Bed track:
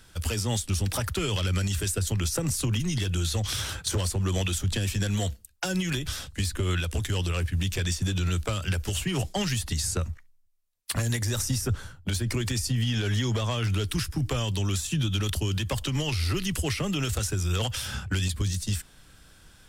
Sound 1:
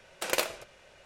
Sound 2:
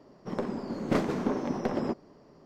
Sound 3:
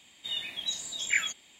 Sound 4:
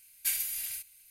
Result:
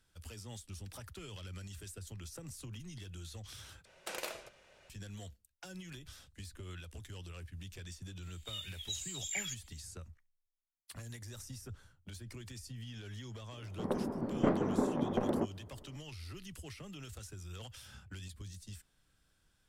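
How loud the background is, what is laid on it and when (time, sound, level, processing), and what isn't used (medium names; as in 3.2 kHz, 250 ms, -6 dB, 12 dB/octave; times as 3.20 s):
bed track -20 dB
3.85 s: replace with 1 -6.5 dB + peak limiter -18.5 dBFS
8.22 s: add 3 -3.5 dB + differentiator
13.52 s: add 2 -2.5 dB + low-pass 1.5 kHz
not used: 4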